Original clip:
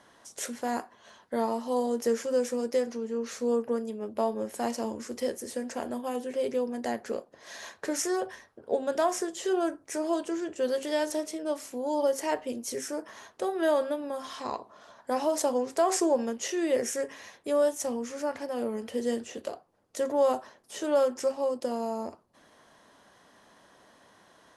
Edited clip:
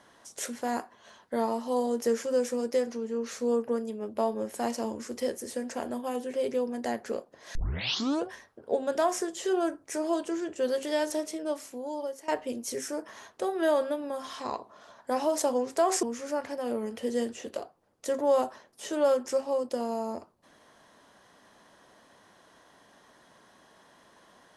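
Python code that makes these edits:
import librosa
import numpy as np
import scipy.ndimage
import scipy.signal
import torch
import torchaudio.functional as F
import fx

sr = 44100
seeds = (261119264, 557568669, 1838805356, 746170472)

y = fx.edit(x, sr, fx.tape_start(start_s=7.55, length_s=0.73),
    fx.fade_out_to(start_s=11.42, length_s=0.86, floor_db=-17.5),
    fx.cut(start_s=16.03, length_s=1.91), tone=tone)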